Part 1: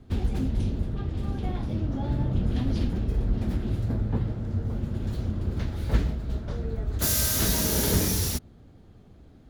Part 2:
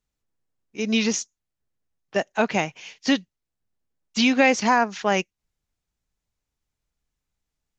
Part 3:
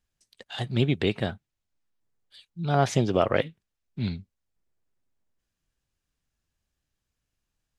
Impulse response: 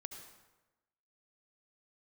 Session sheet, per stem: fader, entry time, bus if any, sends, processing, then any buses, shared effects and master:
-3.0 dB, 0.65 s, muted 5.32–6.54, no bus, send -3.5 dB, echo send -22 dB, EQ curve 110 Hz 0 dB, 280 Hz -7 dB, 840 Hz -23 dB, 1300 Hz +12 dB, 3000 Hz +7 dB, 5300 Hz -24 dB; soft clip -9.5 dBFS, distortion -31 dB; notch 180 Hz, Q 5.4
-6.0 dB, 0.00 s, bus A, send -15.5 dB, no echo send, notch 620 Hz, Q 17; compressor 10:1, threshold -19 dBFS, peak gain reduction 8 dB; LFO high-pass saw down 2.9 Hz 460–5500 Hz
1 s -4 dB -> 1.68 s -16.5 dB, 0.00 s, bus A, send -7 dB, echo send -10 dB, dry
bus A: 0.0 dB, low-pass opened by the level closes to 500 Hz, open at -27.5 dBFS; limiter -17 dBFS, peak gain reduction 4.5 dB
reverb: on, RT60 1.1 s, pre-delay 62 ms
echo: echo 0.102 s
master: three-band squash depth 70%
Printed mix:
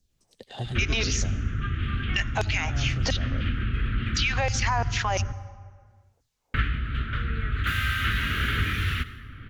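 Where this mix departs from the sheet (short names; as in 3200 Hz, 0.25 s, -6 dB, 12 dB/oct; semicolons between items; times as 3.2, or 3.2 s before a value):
stem 2 -6.0 dB -> +4.0 dB; stem 3 -4.0 dB -> -13.0 dB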